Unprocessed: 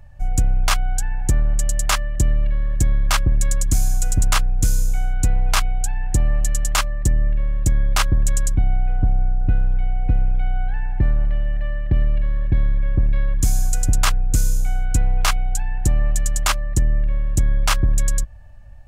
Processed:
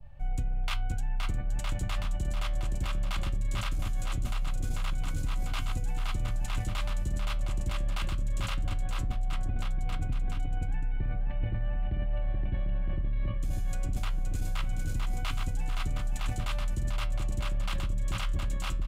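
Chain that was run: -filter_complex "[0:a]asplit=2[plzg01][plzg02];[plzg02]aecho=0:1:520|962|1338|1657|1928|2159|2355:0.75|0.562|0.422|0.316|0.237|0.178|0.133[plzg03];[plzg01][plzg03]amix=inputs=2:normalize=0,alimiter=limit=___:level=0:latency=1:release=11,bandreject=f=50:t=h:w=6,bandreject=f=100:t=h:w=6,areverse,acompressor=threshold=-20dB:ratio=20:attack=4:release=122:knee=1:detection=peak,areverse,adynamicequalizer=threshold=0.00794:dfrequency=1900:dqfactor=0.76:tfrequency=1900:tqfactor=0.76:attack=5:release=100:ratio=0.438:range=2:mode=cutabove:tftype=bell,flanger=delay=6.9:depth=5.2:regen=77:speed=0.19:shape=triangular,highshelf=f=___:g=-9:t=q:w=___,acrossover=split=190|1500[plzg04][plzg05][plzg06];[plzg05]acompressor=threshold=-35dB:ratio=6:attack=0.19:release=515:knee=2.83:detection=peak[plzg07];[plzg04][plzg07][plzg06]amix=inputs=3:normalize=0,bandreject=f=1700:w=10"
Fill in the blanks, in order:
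-8dB, 4500, 1.5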